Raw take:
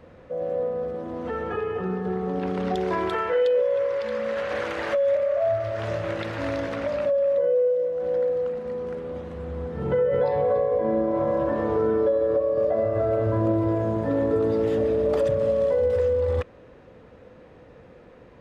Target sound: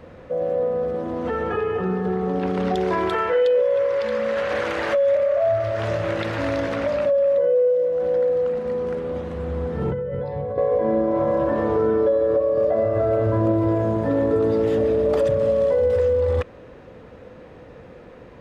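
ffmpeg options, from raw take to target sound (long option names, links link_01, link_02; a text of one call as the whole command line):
ffmpeg -i in.wav -filter_complex "[0:a]asettb=1/sr,asplit=3[link_01][link_02][link_03];[link_01]atrim=end=9.904[link_04];[link_02]atrim=start=9.9:end=10.58,asetpts=PTS-STARTPTS,afade=type=in:duration=0.004:curve=qsin,afade=type=out:start_time=0.676:duration=0.004:curve=qsin,acrossover=split=220[link_05][link_06];[link_06]acompressor=threshold=-41dB:ratio=2.5[link_07];[link_05][link_07]amix=inputs=2:normalize=0[link_08];[link_03]atrim=start=10.576[link_09];[link_04][link_08]acrossfade=duration=0.004:curve1=hsin:curve2=qsin[link_10];[link_10][link_09]acrossfade=duration=0.004:curve1=qsin:curve2=hsin,asplit=2[link_11][link_12];[link_12]alimiter=limit=-23.5dB:level=0:latency=1,volume=-0.5dB[link_13];[link_11][link_13]amix=inputs=2:normalize=0" out.wav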